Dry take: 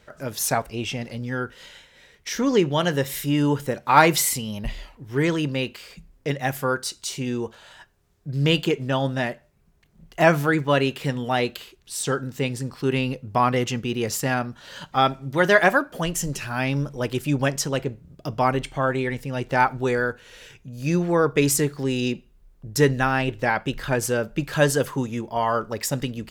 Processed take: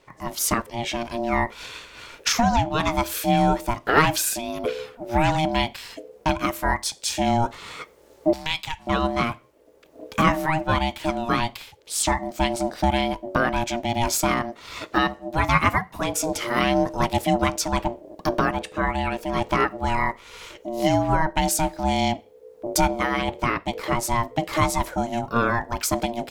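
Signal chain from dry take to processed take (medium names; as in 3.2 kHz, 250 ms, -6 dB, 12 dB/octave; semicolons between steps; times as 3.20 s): recorder AGC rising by 9.6 dB/s; 8.33–8.87 s: high-pass 640 Hz 12 dB/octave; ring modulator 470 Hz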